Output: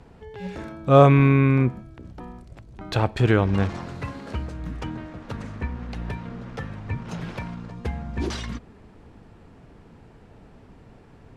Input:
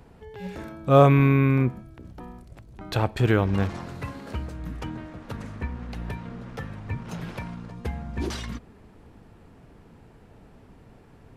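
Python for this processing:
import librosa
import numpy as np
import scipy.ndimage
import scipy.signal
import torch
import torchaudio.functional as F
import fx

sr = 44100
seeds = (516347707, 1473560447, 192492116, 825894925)

y = scipy.signal.sosfilt(scipy.signal.butter(2, 8300.0, 'lowpass', fs=sr, output='sos'), x)
y = y * librosa.db_to_amplitude(2.0)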